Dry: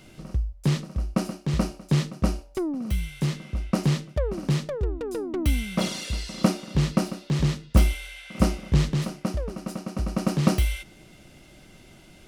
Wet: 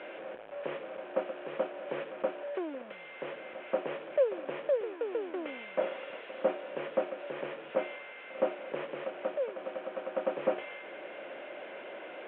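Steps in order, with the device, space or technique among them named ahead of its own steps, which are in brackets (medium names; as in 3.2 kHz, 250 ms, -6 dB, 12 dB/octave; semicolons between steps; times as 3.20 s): digital answering machine (band-pass 370–3300 Hz; one-bit delta coder 16 kbps, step -35 dBFS; cabinet simulation 460–3100 Hz, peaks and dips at 540 Hz +9 dB, 850 Hz -4 dB, 1.2 kHz -7 dB, 2 kHz -7 dB, 2.8 kHz -5 dB)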